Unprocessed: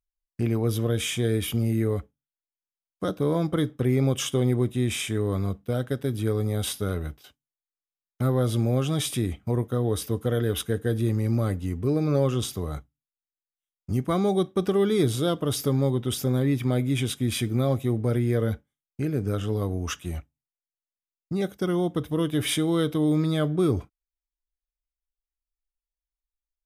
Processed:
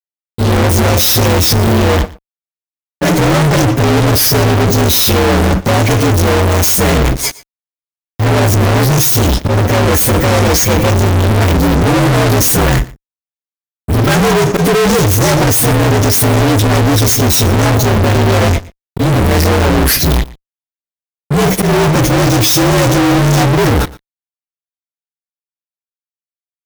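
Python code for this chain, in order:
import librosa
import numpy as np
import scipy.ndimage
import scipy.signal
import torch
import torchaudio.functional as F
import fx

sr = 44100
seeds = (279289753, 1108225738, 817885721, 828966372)

p1 = fx.partial_stretch(x, sr, pct=120)
p2 = fx.high_shelf(p1, sr, hz=7900.0, db=7.5)
p3 = p2 + 0.31 * np.pad(p2, (int(7.0 * sr / 1000.0), 0))[:len(p2)]
p4 = fx.over_compress(p3, sr, threshold_db=-31.0, ratio=-1.0)
p5 = p3 + (p4 * 10.0 ** (2.0 / 20.0))
p6 = fx.auto_swell(p5, sr, attack_ms=204.0)
p7 = fx.fuzz(p6, sr, gain_db=45.0, gate_db=-49.0)
p8 = p7 + fx.echo_single(p7, sr, ms=117, db=-20.5, dry=0)
y = p8 * 10.0 ** (4.0 / 20.0)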